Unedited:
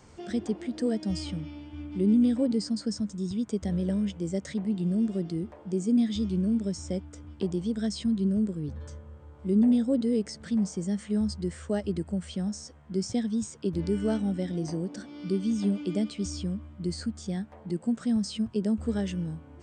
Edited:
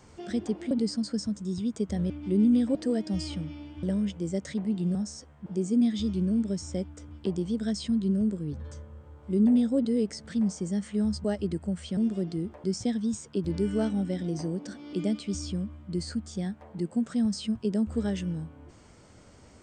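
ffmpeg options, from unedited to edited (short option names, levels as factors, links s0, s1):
-filter_complex "[0:a]asplit=11[s0][s1][s2][s3][s4][s5][s6][s7][s8][s9][s10];[s0]atrim=end=0.712[s11];[s1]atrim=start=2.438:end=3.832[s12];[s2]atrim=start=1.788:end=2.442[s13];[s3]atrim=start=0.708:end=1.792[s14];[s4]atrim=start=3.828:end=4.952[s15];[s5]atrim=start=12.418:end=12.932[s16];[s6]atrim=start=5.618:end=11.402[s17];[s7]atrim=start=11.688:end=12.422[s18];[s8]atrim=start=4.948:end=5.622[s19];[s9]atrim=start=12.928:end=15.222[s20];[s10]atrim=start=15.838[s21];[s11][s12]acrossfade=d=0.004:c1=hsin:c2=hsin[s22];[s22][s13]acrossfade=d=0.004:c1=hsin:c2=hsin[s23];[s23][s14]acrossfade=d=0.004:c1=hsin:c2=hsin[s24];[s24][s15]acrossfade=d=0.004:c1=hsin:c2=hsin[s25];[s25][s16]acrossfade=d=0.004:c1=hsin:c2=hsin[s26];[s26][s17]acrossfade=d=0.004:c1=hsin:c2=hsin[s27];[s27][s18]acrossfade=d=0.004:c1=hsin:c2=hsin[s28];[s28][s19]acrossfade=d=0.004:c1=hsin:c2=hsin[s29];[s29][s20]acrossfade=d=0.004:c1=hsin:c2=hsin[s30];[s30][s21]acrossfade=d=0.004:c1=hsin:c2=hsin"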